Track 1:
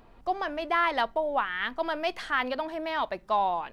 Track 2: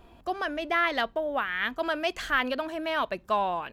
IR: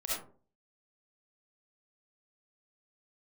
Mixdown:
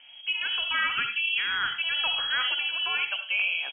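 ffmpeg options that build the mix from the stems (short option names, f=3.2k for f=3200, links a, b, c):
-filter_complex "[0:a]lowshelf=f=480:g=8,volume=-6dB,asplit=2[a][b];[b]volume=-6.5dB[c];[1:a]acompressor=threshold=-27dB:ratio=6,adelay=0.5,volume=-3dB,asplit=2[d][e];[e]volume=-9.5dB[f];[2:a]atrim=start_sample=2205[g];[c][f]amix=inputs=2:normalize=0[h];[h][g]afir=irnorm=-1:irlink=0[i];[a][d][i]amix=inputs=3:normalize=0,aeval=exprs='0.119*(abs(mod(val(0)/0.119+3,4)-2)-1)':c=same,lowpass=f=2.8k:t=q:w=0.5098,lowpass=f=2.8k:t=q:w=0.6013,lowpass=f=2.8k:t=q:w=0.9,lowpass=f=2.8k:t=q:w=2.563,afreqshift=-3300"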